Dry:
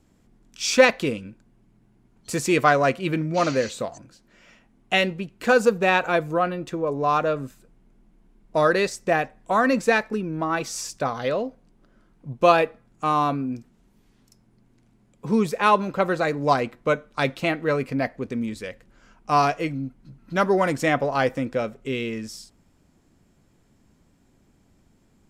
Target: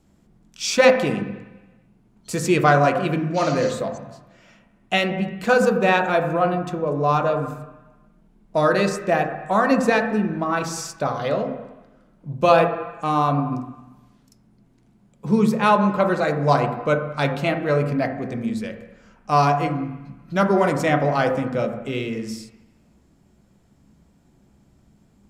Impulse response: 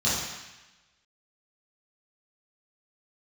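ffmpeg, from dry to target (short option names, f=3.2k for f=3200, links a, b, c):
-filter_complex "[0:a]asplit=2[a][b];[b]highshelf=f=4k:g=-10[c];[1:a]atrim=start_sample=2205,lowpass=2.2k[d];[c][d]afir=irnorm=-1:irlink=0,volume=-15.5dB[e];[a][e]amix=inputs=2:normalize=0"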